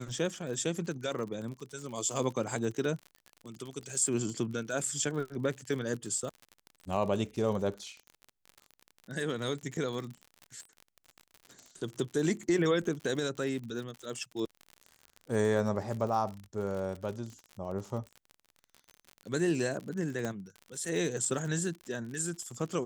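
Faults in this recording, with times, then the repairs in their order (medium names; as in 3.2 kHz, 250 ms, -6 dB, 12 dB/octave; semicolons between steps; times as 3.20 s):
crackle 55 per s -38 dBFS
20.25 s: pop -22 dBFS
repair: de-click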